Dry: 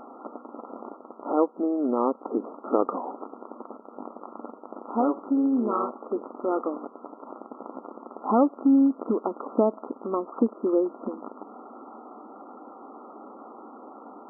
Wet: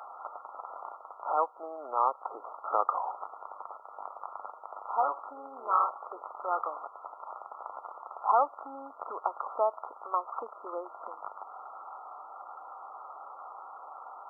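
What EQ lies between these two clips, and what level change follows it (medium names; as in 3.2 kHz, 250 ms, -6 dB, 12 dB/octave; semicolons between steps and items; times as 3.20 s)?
high-pass 780 Hz 24 dB/octave; +3.5 dB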